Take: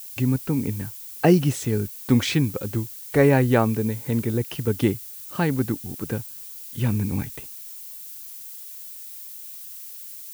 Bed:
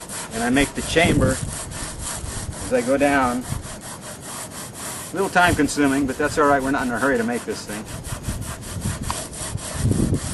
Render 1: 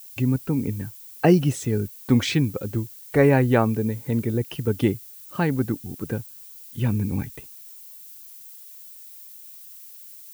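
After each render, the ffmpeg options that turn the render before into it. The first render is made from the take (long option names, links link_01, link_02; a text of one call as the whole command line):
ffmpeg -i in.wav -af "afftdn=noise_reduction=6:noise_floor=-39" out.wav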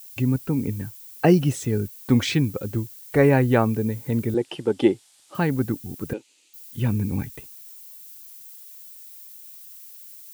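ffmpeg -i in.wav -filter_complex "[0:a]asettb=1/sr,asplit=3[link_01][link_02][link_03];[link_01]atrim=end=4.344[link_04];[link_02]atrim=start=4.34:end=5.35,asetpts=PTS-STARTPTS,afade=type=in:duration=0.004:curve=qsin,afade=type=out:start_time=1.006:duration=0.004:curve=qsin,highpass=220,equalizer=frequency=350:width_type=q:width=4:gain=7,equalizer=frequency=550:width_type=q:width=4:gain=5,equalizer=frequency=810:width_type=q:width=4:gain=10,equalizer=frequency=3300:width_type=q:width=4:gain=4,equalizer=frequency=6300:width_type=q:width=4:gain=-4,lowpass=frequency=8600:width=0.5412,lowpass=frequency=8600:width=1.3066[link_05];[link_03]atrim=start=5.346[link_06];[link_04][link_05]acrossfade=duration=0.004:curve1=hsin:curve2=qsin[link_07];[link_07][link_06]acrossfade=duration=0.004:curve1=qsin:curve2=hsin,asettb=1/sr,asplit=3[link_08][link_09][link_10];[link_08]atrim=end=6.134[link_11];[link_09]atrim=start=6.13:end=6.54,asetpts=PTS-STARTPTS,afade=type=in:duration=0.004:curve=qsin,afade=type=out:start_time=0.406:duration=0.004:curve=qsin,highpass=frequency=300:width=0.5412,highpass=frequency=300:width=1.3066,equalizer=frequency=330:width_type=q:width=4:gain=7,equalizer=frequency=710:width_type=q:width=4:gain=-5,equalizer=frequency=1100:width_type=q:width=4:gain=-8,equalizer=frequency=1600:width_type=q:width=4:gain=-10,equalizer=frequency=2600:width_type=q:width=4:gain=7,equalizer=frequency=5400:width_type=q:width=4:gain=-8,lowpass=frequency=6900:width=0.5412,lowpass=frequency=6900:width=1.3066[link_12];[link_10]atrim=start=6.536[link_13];[link_11][link_12]acrossfade=duration=0.004:curve1=hsin:curve2=qsin[link_14];[link_14][link_13]acrossfade=duration=0.004:curve1=qsin:curve2=hsin" out.wav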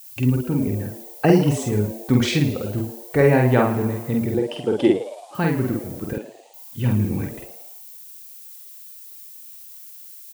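ffmpeg -i in.wav -filter_complex "[0:a]asplit=2[link_01][link_02];[link_02]adelay=48,volume=-2.5dB[link_03];[link_01][link_03]amix=inputs=2:normalize=0,asplit=6[link_04][link_05][link_06][link_07][link_08][link_09];[link_05]adelay=110,afreqshift=120,volume=-14dB[link_10];[link_06]adelay=220,afreqshift=240,volume=-20.4dB[link_11];[link_07]adelay=330,afreqshift=360,volume=-26.8dB[link_12];[link_08]adelay=440,afreqshift=480,volume=-33.1dB[link_13];[link_09]adelay=550,afreqshift=600,volume=-39.5dB[link_14];[link_04][link_10][link_11][link_12][link_13][link_14]amix=inputs=6:normalize=0" out.wav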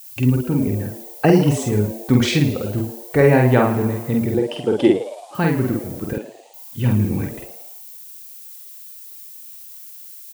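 ffmpeg -i in.wav -af "volume=2.5dB,alimiter=limit=-3dB:level=0:latency=1" out.wav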